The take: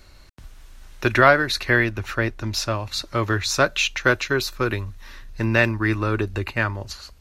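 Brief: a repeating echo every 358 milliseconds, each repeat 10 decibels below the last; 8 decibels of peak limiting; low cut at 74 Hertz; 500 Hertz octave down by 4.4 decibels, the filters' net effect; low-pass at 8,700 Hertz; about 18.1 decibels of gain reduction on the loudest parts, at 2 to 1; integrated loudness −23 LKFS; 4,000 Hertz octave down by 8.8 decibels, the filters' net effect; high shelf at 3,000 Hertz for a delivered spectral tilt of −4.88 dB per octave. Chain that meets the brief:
high-pass filter 74 Hz
low-pass filter 8,700 Hz
parametric band 500 Hz −5.5 dB
high-shelf EQ 3,000 Hz −6.5 dB
parametric band 4,000 Hz −5.5 dB
downward compressor 2 to 1, threshold −46 dBFS
brickwall limiter −29 dBFS
repeating echo 358 ms, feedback 32%, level −10 dB
level +18 dB

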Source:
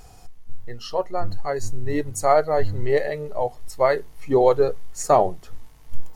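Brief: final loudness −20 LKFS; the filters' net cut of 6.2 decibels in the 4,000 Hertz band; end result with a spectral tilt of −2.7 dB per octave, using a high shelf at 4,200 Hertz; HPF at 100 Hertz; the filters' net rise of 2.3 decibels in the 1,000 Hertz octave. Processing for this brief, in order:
high-pass filter 100 Hz
parametric band 1,000 Hz +4 dB
parametric band 4,000 Hz −3 dB
high-shelf EQ 4,200 Hz −8.5 dB
level +1.5 dB

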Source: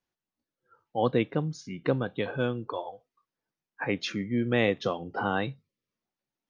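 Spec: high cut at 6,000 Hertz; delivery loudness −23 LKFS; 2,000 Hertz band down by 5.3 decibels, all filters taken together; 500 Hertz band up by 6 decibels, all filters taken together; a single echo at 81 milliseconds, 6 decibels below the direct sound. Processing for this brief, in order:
low-pass filter 6,000 Hz
parametric band 500 Hz +7 dB
parametric band 2,000 Hz −7.5 dB
single-tap delay 81 ms −6 dB
level +3 dB

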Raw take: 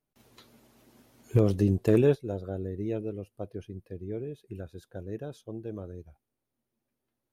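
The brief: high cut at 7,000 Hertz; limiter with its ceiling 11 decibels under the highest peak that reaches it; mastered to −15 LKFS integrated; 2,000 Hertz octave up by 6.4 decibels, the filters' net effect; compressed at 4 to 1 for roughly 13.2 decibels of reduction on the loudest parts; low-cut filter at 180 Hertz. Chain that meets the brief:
high-pass filter 180 Hz
low-pass filter 7,000 Hz
parametric band 2,000 Hz +8.5 dB
downward compressor 4 to 1, threshold −34 dBFS
level +28.5 dB
brickwall limiter −3 dBFS

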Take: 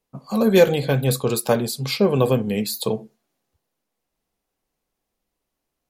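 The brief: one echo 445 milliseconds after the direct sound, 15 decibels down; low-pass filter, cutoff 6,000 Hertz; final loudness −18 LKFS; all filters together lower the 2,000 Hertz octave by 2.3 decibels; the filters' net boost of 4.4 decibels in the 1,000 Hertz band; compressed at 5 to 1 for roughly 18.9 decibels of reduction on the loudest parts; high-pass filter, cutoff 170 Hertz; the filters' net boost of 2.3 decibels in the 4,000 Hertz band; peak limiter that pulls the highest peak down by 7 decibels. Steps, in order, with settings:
high-pass filter 170 Hz
low-pass filter 6,000 Hz
parametric band 1,000 Hz +7 dB
parametric band 2,000 Hz −7 dB
parametric band 4,000 Hz +5 dB
downward compressor 5 to 1, threshold −30 dBFS
brickwall limiter −24 dBFS
single-tap delay 445 ms −15 dB
level +16.5 dB

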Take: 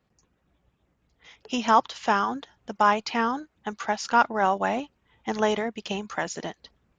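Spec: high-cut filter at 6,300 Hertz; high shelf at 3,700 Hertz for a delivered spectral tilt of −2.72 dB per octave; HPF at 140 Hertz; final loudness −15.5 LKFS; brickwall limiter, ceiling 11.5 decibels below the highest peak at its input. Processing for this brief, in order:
high-pass filter 140 Hz
low-pass filter 6,300 Hz
high-shelf EQ 3,700 Hz −4.5 dB
level +16 dB
brickwall limiter −2 dBFS

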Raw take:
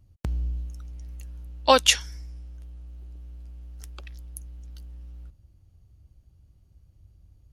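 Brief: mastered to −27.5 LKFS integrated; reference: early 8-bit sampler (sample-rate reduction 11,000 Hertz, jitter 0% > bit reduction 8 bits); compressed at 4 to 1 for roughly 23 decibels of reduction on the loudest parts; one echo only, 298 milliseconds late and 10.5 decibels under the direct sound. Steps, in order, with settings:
downward compressor 4 to 1, threshold −41 dBFS
single-tap delay 298 ms −10.5 dB
sample-rate reduction 11,000 Hz, jitter 0%
bit reduction 8 bits
level +16 dB

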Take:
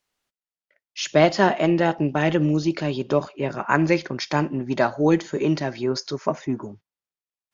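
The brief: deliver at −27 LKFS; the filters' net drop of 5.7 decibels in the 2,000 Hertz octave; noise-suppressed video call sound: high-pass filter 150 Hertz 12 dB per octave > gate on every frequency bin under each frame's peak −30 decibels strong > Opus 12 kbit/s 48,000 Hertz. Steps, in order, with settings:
high-pass filter 150 Hz 12 dB per octave
parametric band 2,000 Hz −7.5 dB
gate on every frequency bin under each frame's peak −30 dB strong
level −3 dB
Opus 12 kbit/s 48,000 Hz

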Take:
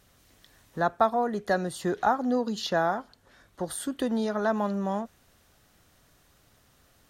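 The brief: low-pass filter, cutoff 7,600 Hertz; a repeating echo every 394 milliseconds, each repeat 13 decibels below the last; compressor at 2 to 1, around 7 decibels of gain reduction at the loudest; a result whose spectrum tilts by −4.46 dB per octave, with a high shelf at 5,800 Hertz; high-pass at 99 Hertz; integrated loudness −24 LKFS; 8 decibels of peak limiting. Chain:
high-pass filter 99 Hz
low-pass filter 7,600 Hz
high-shelf EQ 5,800 Hz +5.5 dB
downward compressor 2 to 1, threshold −30 dBFS
brickwall limiter −23 dBFS
repeating echo 394 ms, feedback 22%, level −13 dB
level +10 dB

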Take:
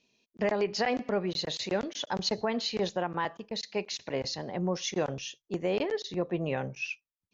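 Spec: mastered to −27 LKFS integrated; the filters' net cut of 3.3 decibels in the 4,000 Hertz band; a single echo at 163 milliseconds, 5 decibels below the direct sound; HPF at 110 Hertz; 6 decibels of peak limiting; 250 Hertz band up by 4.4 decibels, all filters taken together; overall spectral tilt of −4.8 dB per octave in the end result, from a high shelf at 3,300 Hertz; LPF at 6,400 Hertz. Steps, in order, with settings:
high-pass filter 110 Hz
low-pass filter 6,400 Hz
parametric band 250 Hz +6.5 dB
high-shelf EQ 3,300 Hz +7 dB
parametric band 4,000 Hz −8 dB
brickwall limiter −21 dBFS
single-tap delay 163 ms −5 dB
level +4.5 dB

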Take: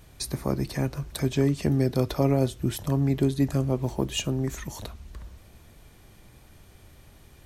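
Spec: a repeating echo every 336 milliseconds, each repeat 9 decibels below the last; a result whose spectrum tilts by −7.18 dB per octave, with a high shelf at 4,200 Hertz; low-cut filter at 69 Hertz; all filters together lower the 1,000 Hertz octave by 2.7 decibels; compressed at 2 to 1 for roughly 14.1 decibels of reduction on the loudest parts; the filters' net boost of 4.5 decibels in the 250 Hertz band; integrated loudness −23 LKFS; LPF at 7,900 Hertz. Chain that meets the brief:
high-pass filter 69 Hz
low-pass filter 7,900 Hz
parametric band 250 Hz +5.5 dB
parametric band 1,000 Hz −4 dB
high-shelf EQ 4,200 Hz −5 dB
downward compressor 2 to 1, threshold −42 dBFS
repeating echo 336 ms, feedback 35%, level −9 dB
level +13.5 dB

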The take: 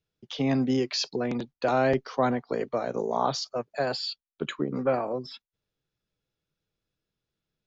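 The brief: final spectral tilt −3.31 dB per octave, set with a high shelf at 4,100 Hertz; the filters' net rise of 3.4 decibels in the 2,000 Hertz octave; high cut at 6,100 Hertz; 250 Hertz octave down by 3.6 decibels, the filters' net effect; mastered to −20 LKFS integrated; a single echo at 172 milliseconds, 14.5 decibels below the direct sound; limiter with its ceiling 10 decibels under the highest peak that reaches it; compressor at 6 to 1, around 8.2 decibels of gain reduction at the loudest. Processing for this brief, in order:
low-pass filter 6,100 Hz
parametric band 250 Hz −4 dB
parametric band 2,000 Hz +4 dB
high-shelf EQ 4,100 Hz +3 dB
downward compressor 6 to 1, threshold −28 dBFS
brickwall limiter −26.5 dBFS
single-tap delay 172 ms −14.5 dB
level +16.5 dB

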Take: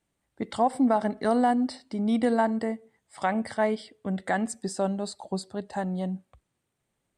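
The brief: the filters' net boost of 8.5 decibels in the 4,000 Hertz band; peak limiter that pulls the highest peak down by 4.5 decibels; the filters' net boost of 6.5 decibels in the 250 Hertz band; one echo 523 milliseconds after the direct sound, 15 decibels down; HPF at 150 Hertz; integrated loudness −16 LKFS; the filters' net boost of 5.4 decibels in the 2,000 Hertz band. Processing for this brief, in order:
high-pass filter 150 Hz
parametric band 250 Hz +8 dB
parametric band 2,000 Hz +5 dB
parametric band 4,000 Hz +9 dB
brickwall limiter −12.5 dBFS
single-tap delay 523 ms −15 dB
level +8.5 dB

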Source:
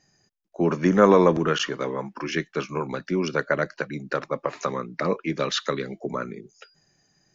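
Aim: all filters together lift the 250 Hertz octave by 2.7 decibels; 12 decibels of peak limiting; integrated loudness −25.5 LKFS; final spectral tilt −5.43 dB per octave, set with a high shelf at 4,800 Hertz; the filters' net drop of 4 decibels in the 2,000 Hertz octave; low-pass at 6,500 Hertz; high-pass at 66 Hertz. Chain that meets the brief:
high-pass filter 66 Hz
low-pass filter 6,500 Hz
parametric band 250 Hz +4 dB
parametric band 2,000 Hz −4.5 dB
high-shelf EQ 4,800 Hz −7 dB
level +2 dB
brickwall limiter −12 dBFS

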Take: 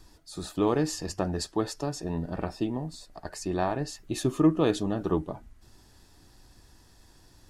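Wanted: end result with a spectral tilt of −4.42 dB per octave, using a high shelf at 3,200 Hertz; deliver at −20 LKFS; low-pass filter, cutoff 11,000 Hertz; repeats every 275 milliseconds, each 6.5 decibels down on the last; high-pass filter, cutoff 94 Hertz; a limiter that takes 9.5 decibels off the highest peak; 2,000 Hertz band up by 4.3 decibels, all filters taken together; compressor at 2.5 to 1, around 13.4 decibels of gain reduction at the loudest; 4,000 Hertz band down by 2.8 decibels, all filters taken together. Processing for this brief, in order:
high-pass filter 94 Hz
low-pass filter 11,000 Hz
parametric band 2,000 Hz +6 dB
high-shelf EQ 3,200 Hz +5 dB
parametric band 4,000 Hz −9 dB
downward compressor 2.5 to 1, threshold −37 dBFS
brickwall limiter −30.5 dBFS
repeating echo 275 ms, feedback 47%, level −6.5 dB
level +21 dB

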